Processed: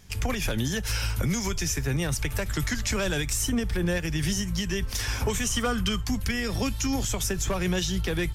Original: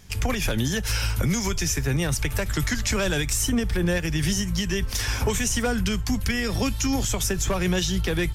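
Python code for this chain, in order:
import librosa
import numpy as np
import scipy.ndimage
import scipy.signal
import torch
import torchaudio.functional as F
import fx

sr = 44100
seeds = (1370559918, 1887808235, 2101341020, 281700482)

y = fx.small_body(x, sr, hz=(1200.0, 3100.0), ring_ms=45, db=fx.line((5.41, 16.0), (6.03, 13.0)), at=(5.41, 6.03), fade=0.02)
y = y * librosa.db_to_amplitude(-3.0)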